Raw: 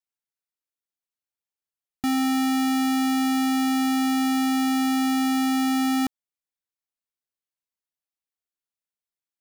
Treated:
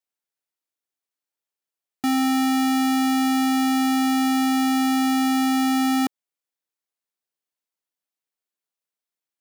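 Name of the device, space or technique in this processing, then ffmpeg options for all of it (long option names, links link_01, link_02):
filter by subtraction: -filter_complex "[0:a]asplit=2[link_01][link_02];[link_02]lowpass=380,volume=-1[link_03];[link_01][link_03]amix=inputs=2:normalize=0,volume=2dB"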